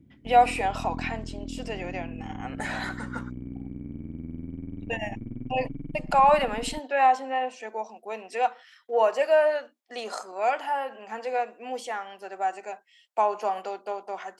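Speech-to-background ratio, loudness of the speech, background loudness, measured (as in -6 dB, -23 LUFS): 11.5 dB, -27.0 LUFS, -38.5 LUFS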